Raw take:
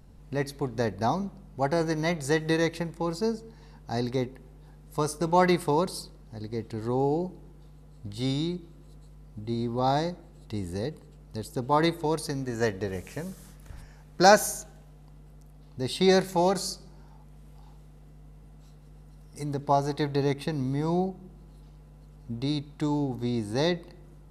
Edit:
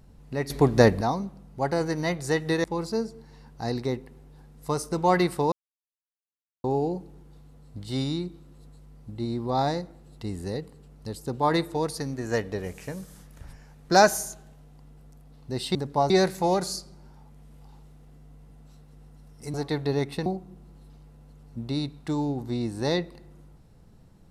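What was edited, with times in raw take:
0.50–1.01 s: gain +11 dB
2.64–2.93 s: delete
5.81–6.93 s: mute
19.48–19.83 s: move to 16.04 s
20.55–20.99 s: delete

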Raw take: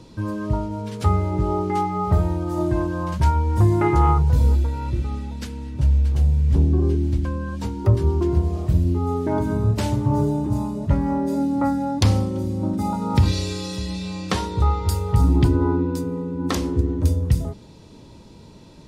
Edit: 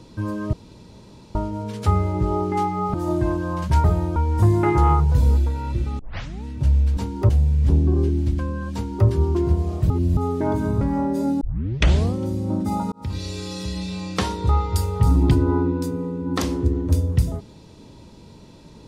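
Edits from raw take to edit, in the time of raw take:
0.53 s: insert room tone 0.82 s
2.12–2.44 s: move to 3.34 s
5.17 s: tape start 0.45 s
7.60–7.92 s: copy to 6.15 s
8.76–9.03 s: reverse
9.67–10.94 s: delete
11.54 s: tape start 0.73 s
13.05–14.04 s: fade in equal-power

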